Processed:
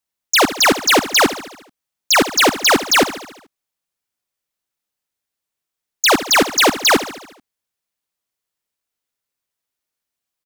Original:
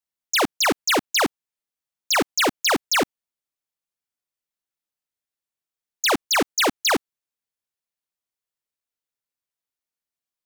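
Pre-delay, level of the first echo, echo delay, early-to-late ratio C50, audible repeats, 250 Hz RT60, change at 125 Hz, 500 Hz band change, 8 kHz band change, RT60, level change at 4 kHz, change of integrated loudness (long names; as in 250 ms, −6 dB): no reverb audible, −14.0 dB, 72 ms, no reverb audible, 5, no reverb audible, +7.5 dB, +7.5 dB, +7.5 dB, no reverb audible, +7.5 dB, +7.0 dB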